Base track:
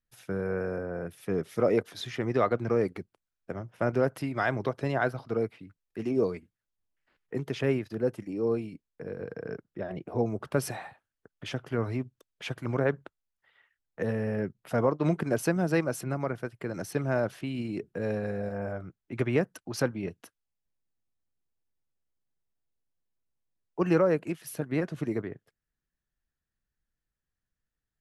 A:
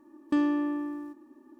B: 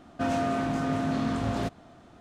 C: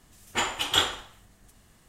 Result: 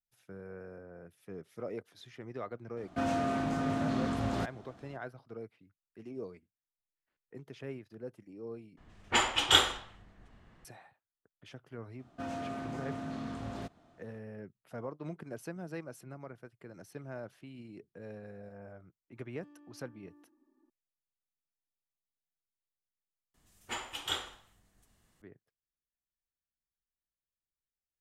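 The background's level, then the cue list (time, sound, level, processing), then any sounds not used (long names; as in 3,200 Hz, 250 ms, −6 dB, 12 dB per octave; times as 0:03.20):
base track −15.5 dB
0:02.77: mix in B −4 dB
0:08.77: overwrite with C + low-pass that shuts in the quiet parts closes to 2,200 Hz, open at −21 dBFS
0:11.99: mix in B −11.5 dB
0:19.11: mix in A −17.5 dB + downward compressor 8 to 1, threshold −39 dBFS
0:23.34: overwrite with C −12 dB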